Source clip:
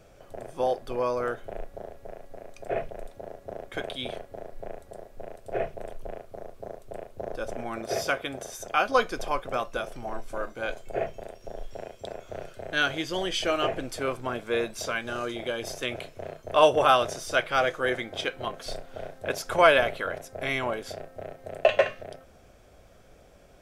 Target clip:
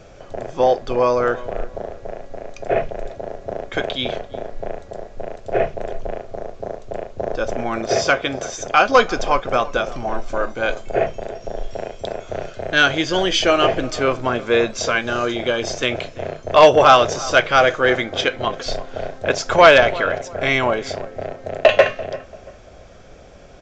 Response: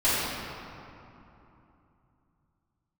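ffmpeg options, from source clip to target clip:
-filter_complex "[0:a]aresample=16000,aeval=exprs='0.596*sin(PI/2*1.78*val(0)/0.596)':c=same,aresample=44100,asplit=2[a][b];[b]adelay=340,lowpass=f=1.3k:p=1,volume=-17dB,asplit=2[c][d];[d]adelay=340,lowpass=f=1.3k:p=1,volume=0.33,asplit=2[e][f];[f]adelay=340,lowpass=f=1.3k:p=1,volume=0.33[g];[a][c][e][g]amix=inputs=4:normalize=0,volume=2dB"

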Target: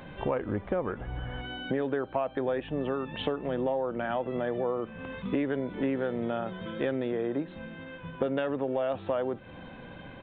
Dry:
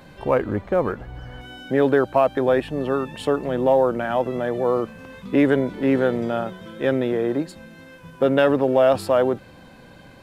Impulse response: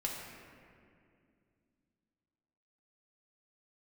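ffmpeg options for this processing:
-filter_complex "[0:a]acompressor=threshold=-28dB:ratio=6,asplit=2[a][b];[1:a]atrim=start_sample=2205,atrim=end_sample=3528[c];[b][c]afir=irnorm=-1:irlink=0,volume=-17.5dB[d];[a][d]amix=inputs=2:normalize=0,aresample=8000,aresample=44100"

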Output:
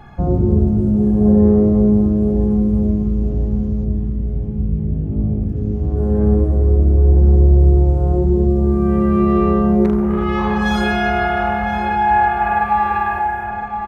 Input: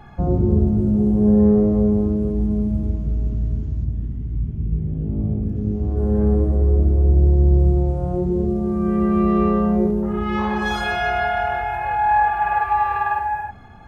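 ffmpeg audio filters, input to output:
-filter_complex "[0:a]asplit=2[a][b];[b]adelay=1015,lowpass=f=2.5k:p=1,volume=-8dB,asplit=2[c][d];[d]adelay=1015,lowpass=f=2.5k:p=1,volume=0.48,asplit=2[e][f];[f]adelay=1015,lowpass=f=2.5k:p=1,volume=0.48,asplit=2[g][h];[h]adelay=1015,lowpass=f=2.5k:p=1,volume=0.48,asplit=2[i][j];[j]adelay=1015,lowpass=f=2.5k:p=1,volume=0.48,asplit=2[k][l];[l]adelay=1015,lowpass=f=2.5k:p=1,volume=0.48[m];[a][c][e][g][i][k][m]amix=inputs=7:normalize=0,asettb=1/sr,asplit=3[n][o][p];[n]atrim=end=9.844[q];[o]atrim=start=9.84:end=10.24,asetpts=PTS-STARTPTS,afade=t=in:d=0.004:c=qsin,afade=t=out:st=0.396:d=0.004:c=qsin,aeval=exprs='0.335*(cos(1*acos(clip(val(0)/0.335,-1,1)))-cos(1*PI/2))+0.0266*(cos(3*acos(clip(val(0)/0.335,-1,1)))-cos(3*PI/2))+0.0299*(cos(5*acos(clip(val(0)/0.335,-1,1)))-cos(5*PI/2))':c=same[r];[p]atrim=start=10.236[s];[q][r]acrossfade=d=0.004:c1=hsin:c2=qsin[t];[t][s]acrossfade=d=0.004:c1=qsin:c2=hsin,volume=2.5dB"

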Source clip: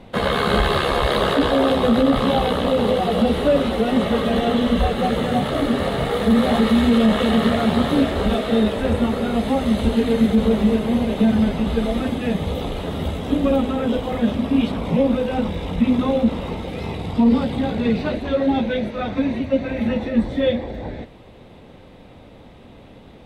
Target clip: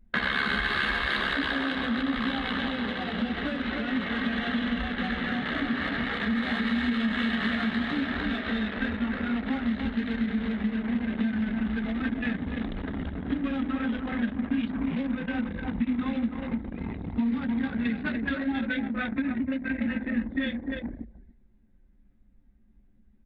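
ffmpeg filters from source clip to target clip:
-af "equalizer=f=1.6k:t=o:w=0.39:g=8.5,aecho=1:1:295:0.473,anlmdn=1000,acompressor=threshold=-25dB:ratio=6,equalizer=f=125:t=o:w=1:g=-7,equalizer=f=250:t=o:w=1:g=8,equalizer=f=500:t=o:w=1:g=-10,equalizer=f=2k:t=o:w=1:g=10,equalizer=f=4k:t=o:w=1:g=6,volume=-3.5dB"

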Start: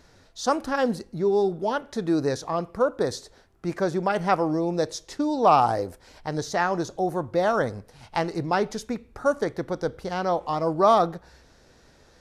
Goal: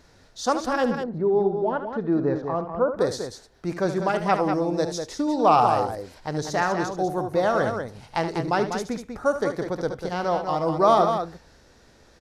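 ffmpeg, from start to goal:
-filter_complex "[0:a]asettb=1/sr,asplit=3[a][b][c];[a]atrim=end=0.844[d];[b]atrim=start=0.84:end=2.97,asetpts=PTS-STARTPTS,afade=t=in:d=0.004:c=qsin,afade=t=out:st=2.126:d=0.004:c=qsin,lowpass=1.5k[e];[c]atrim=start=2.966[f];[d][e]acrossfade=d=0.004:c1=hsin:c2=qsin[g];[g][f]acrossfade=d=0.004:c1=qsin:c2=hsin,aecho=1:1:72.89|195.3:0.316|0.447"

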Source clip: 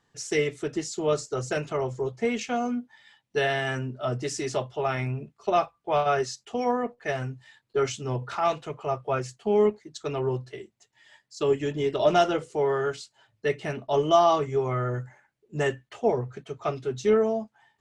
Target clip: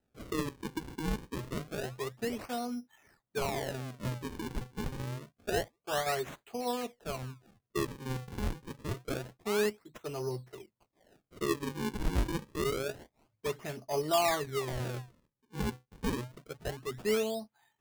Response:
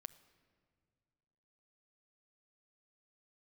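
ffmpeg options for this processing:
-af "acrusher=samples=39:mix=1:aa=0.000001:lfo=1:lforange=62.4:lforate=0.27,volume=-8.5dB"

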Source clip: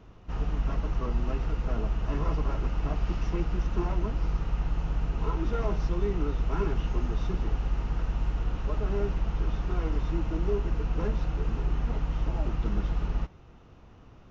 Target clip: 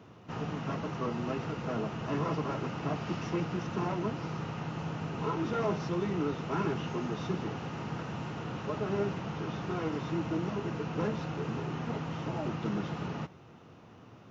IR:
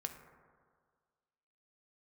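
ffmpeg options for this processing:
-af "afftfilt=real='re*lt(hypot(re,im),0.316)':imag='im*lt(hypot(re,im),0.316)':win_size=1024:overlap=0.75,highpass=f=110:w=0.5412,highpass=f=110:w=1.3066,volume=2.5dB"

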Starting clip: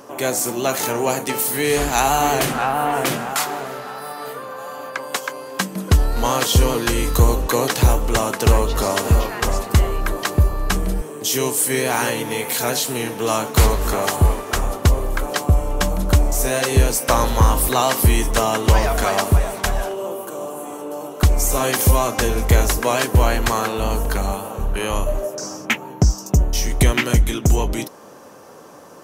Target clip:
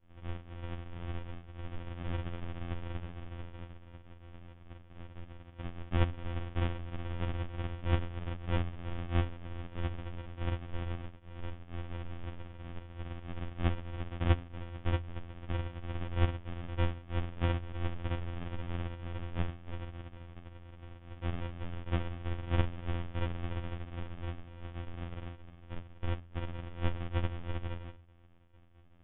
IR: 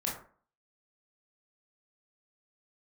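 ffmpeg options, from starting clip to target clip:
-filter_complex "[1:a]atrim=start_sample=2205,atrim=end_sample=4410[a];[0:a][a]afir=irnorm=-1:irlink=0,afftfilt=real='hypot(re,im)*cos(2*PI*random(0))':imag='hypot(re,im)*sin(2*PI*random(1))':win_size=512:overlap=0.75,acrossover=split=660[b][c];[b]aeval=exprs='val(0)*(1-0.5/2+0.5/2*cos(2*PI*3.5*n/s))':c=same[d];[c]aeval=exprs='val(0)*(1-0.5/2-0.5/2*cos(2*PI*3.5*n/s))':c=same[e];[d][e]amix=inputs=2:normalize=0,aresample=8000,acrusher=samples=34:mix=1:aa=0.000001,aresample=44100,bandreject=f=107.2:t=h:w=4,bandreject=f=214.4:t=h:w=4,bandreject=f=321.6:t=h:w=4,asetrate=39289,aresample=44100,atempo=1.12246,afftfilt=real='hypot(re,im)*cos(PI*b)':imag='0':win_size=2048:overlap=0.75,volume=-8.5dB"

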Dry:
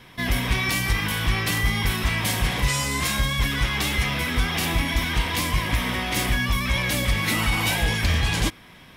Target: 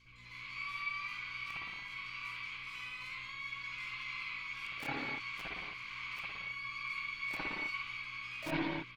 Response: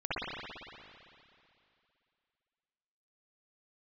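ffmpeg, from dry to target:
-filter_complex "[0:a]areverse,acompressor=threshold=-34dB:ratio=16,areverse,asplit=3[a][b][c];[a]bandpass=f=300:t=q:w=8,volume=0dB[d];[b]bandpass=f=870:t=q:w=8,volume=-6dB[e];[c]bandpass=f=2.24k:t=q:w=8,volume=-9dB[f];[d][e][f]amix=inputs=3:normalize=0,acrossover=split=2000[g][h];[g]acrusher=bits=6:mix=0:aa=0.000001[i];[i][h]amix=inputs=2:normalize=0,aeval=exprs='val(0)+0.000141*(sin(2*PI*60*n/s)+sin(2*PI*2*60*n/s)/2+sin(2*PI*3*60*n/s)/3+sin(2*PI*4*60*n/s)/4+sin(2*PI*5*60*n/s)/5)':c=same,aeval=exprs='0.02*(cos(1*acos(clip(val(0)/0.02,-1,1)))-cos(1*PI/2))+0.000708*(cos(2*acos(clip(val(0)/0.02,-1,1)))-cos(2*PI/2))+0.000355*(cos(3*acos(clip(val(0)/0.02,-1,1)))-cos(3*PI/2))+0.00282*(cos(5*acos(clip(val(0)/0.02,-1,1)))-cos(5*PI/2))+0.000316*(cos(7*acos(clip(val(0)/0.02,-1,1)))-cos(7*PI/2))':c=same,asplit=3[j][k][l];[k]asetrate=22050,aresample=44100,atempo=2,volume=-9dB[m];[l]asetrate=88200,aresample=44100,atempo=0.5,volume=-8dB[n];[j][m][n]amix=inputs=3:normalize=0[o];[1:a]atrim=start_sample=2205,afade=t=out:st=0.38:d=0.01,atrim=end_sample=17199[p];[o][p]afir=irnorm=-1:irlink=0,volume=6dB"

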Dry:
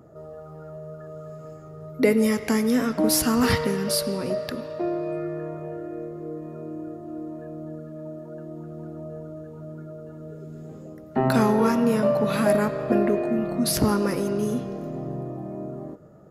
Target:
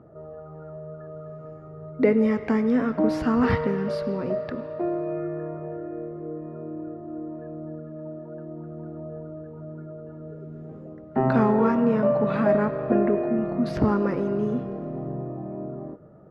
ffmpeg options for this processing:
-af "lowpass=1.8k"

